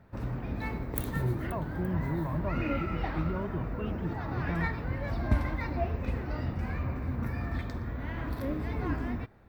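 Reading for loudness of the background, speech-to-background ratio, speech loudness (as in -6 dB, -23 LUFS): -34.5 LUFS, -2.0 dB, -36.5 LUFS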